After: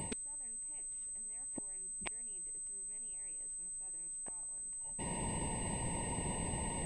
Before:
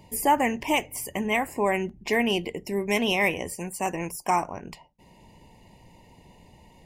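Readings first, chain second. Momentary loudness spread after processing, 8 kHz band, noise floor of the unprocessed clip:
3 LU, +1.5 dB, -55 dBFS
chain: reverse; compression 8:1, threshold -35 dBFS, peak gain reduction 18.5 dB; reverse; inverted gate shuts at -36 dBFS, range -42 dB; added noise brown -78 dBFS; class-D stage that switches slowly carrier 8.2 kHz; trim +13 dB

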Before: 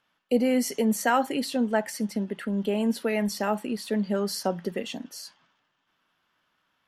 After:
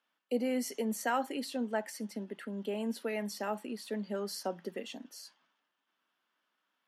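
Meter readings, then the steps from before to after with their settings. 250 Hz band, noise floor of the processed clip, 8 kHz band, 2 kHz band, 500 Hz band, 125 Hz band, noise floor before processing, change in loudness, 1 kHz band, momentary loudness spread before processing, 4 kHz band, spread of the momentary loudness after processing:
-10.5 dB, -83 dBFS, -8.5 dB, -8.5 dB, -8.5 dB, -12.0 dB, -74 dBFS, -9.5 dB, -8.5 dB, 10 LU, -8.5 dB, 10 LU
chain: high-pass 210 Hz 24 dB/octave; trim -8.5 dB

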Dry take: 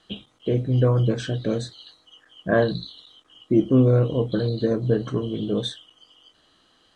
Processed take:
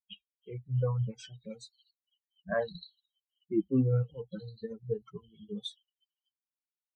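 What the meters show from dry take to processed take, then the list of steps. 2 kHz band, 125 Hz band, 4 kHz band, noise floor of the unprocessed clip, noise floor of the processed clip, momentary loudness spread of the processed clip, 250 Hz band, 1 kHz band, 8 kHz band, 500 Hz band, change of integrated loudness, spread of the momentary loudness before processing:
-11.5 dB, -11.0 dB, -12.5 dB, -62 dBFS, under -85 dBFS, 20 LU, -12.5 dB, -12.0 dB, no reading, -13.5 dB, -11.0 dB, 15 LU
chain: expander on every frequency bin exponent 3; trim -7 dB

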